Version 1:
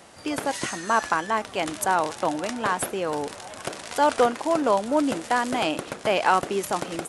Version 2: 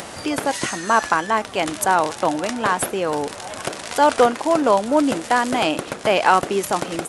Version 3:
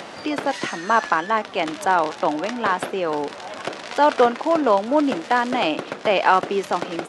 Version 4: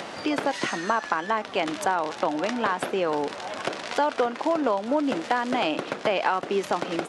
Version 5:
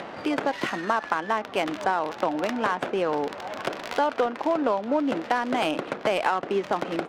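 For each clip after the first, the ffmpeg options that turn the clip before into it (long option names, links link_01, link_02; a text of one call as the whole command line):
ffmpeg -i in.wav -af "acompressor=mode=upward:threshold=-30dB:ratio=2.5,volume=5dB" out.wav
ffmpeg -i in.wav -filter_complex "[0:a]acrossover=split=150 5500:gain=0.178 1 0.112[link_01][link_02][link_03];[link_01][link_02][link_03]amix=inputs=3:normalize=0,volume=-1dB" out.wav
ffmpeg -i in.wav -af "acompressor=threshold=-20dB:ratio=6" out.wav
ffmpeg -i in.wav -af "adynamicsmooth=sensitivity=3.5:basefreq=2000" out.wav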